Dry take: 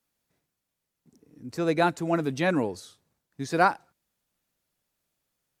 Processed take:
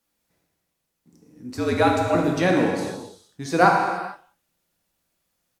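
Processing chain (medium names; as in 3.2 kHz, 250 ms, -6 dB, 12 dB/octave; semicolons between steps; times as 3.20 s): speakerphone echo 180 ms, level -24 dB; 1.56–2.15 s: frequency shift -59 Hz; gated-style reverb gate 490 ms falling, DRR -0.5 dB; trim +2.5 dB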